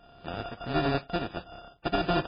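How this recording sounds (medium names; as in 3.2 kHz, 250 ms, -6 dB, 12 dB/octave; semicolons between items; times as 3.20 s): a buzz of ramps at a fixed pitch in blocks of 64 samples; tremolo triangle 1.4 Hz, depth 65%; aliases and images of a low sample rate 2.1 kHz, jitter 0%; MP3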